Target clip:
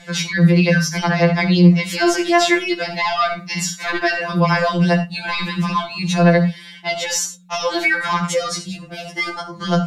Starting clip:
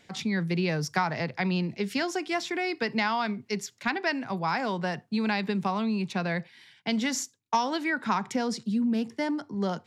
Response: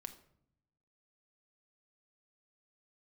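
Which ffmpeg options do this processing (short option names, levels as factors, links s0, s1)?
-filter_complex "[0:a]asettb=1/sr,asplit=3[s0][s1][s2];[s0]atrim=end=3.274[s3];[s1]atrim=start=3.27:end=3.8,asetpts=PTS-STARTPTS,afade=t=in:d=0.004:c=qsin,afade=t=out:st=0.526:d=0.004:c=qsin,asplit=2[s4][s5];[s5]adelay=48,volume=0.422[s6];[s4][s6]amix=inputs=2:normalize=0,atrim=end_sample=23373[s7];[s2]atrim=start=3.796[s8];[s3][s7]acrossfade=d=0.004:c1=hsin:c2=qsin[s9];[s9][s8]acrossfade=d=0.004:c1=qsin:c2=hsin,acrossover=split=300|420|2100[s10][s11][s12][s13];[s10]bandpass=f=220:t=q:w=2.4:csg=0[s14];[s12]asoftclip=type=tanh:threshold=0.0531[s15];[s14][s11][s15][s13]amix=inputs=4:normalize=0[s16];[1:a]atrim=start_sample=2205,atrim=end_sample=3087,asetrate=29106,aresample=44100[s17];[s16][s17]afir=irnorm=-1:irlink=0,aeval=exprs='val(0)+0.000708*(sin(2*PI*60*n/s)+sin(2*PI*2*60*n/s)/2+sin(2*PI*3*60*n/s)/3+sin(2*PI*4*60*n/s)/4+sin(2*PI*5*60*n/s)/5)':c=same,alimiter=level_in=22.4:limit=0.891:release=50:level=0:latency=1,afftfilt=real='re*2.83*eq(mod(b,8),0)':imag='im*2.83*eq(mod(b,8),0)':win_size=2048:overlap=0.75,volume=0.501"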